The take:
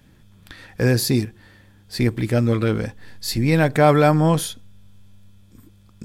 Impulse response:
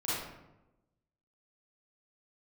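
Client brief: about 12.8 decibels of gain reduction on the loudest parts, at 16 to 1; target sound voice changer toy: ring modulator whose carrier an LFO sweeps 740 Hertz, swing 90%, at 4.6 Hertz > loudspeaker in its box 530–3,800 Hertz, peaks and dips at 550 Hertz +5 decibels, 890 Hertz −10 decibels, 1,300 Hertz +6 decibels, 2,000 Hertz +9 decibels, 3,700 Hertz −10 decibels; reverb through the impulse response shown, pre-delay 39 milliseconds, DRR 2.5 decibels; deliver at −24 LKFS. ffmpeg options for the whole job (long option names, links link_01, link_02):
-filter_complex "[0:a]acompressor=threshold=-22dB:ratio=16,asplit=2[link_01][link_02];[1:a]atrim=start_sample=2205,adelay=39[link_03];[link_02][link_03]afir=irnorm=-1:irlink=0,volume=-9dB[link_04];[link_01][link_04]amix=inputs=2:normalize=0,aeval=exprs='val(0)*sin(2*PI*740*n/s+740*0.9/4.6*sin(2*PI*4.6*n/s))':channel_layout=same,highpass=530,equalizer=frequency=550:width_type=q:width=4:gain=5,equalizer=frequency=890:width_type=q:width=4:gain=-10,equalizer=frequency=1300:width_type=q:width=4:gain=6,equalizer=frequency=2000:width_type=q:width=4:gain=9,equalizer=frequency=3700:width_type=q:width=4:gain=-10,lowpass=frequency=3800:width=0.5412,lowpass=frequency=3800:width=1.3066,volume=4.5dB"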